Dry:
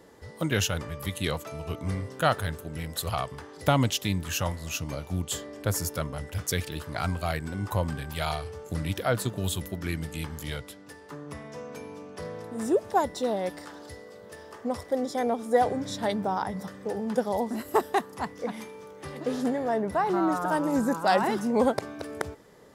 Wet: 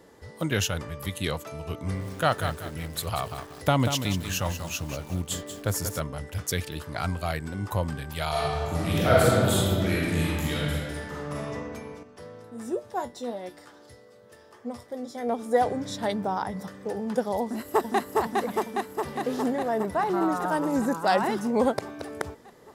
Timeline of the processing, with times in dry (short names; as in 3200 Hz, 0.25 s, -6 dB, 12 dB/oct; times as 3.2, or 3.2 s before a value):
1.76–6 lo-fi delay 0.187 s, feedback 35%, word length 7-bit, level -8 dB
8.29–11.49 reverb throw, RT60 2 s, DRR -7.5 dB
12.03–15.29 resonator 120 Hz, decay 0.16 s, mix 80%
17.43–18.18 echo throw 0.41 s, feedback 75%, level -1.5 dB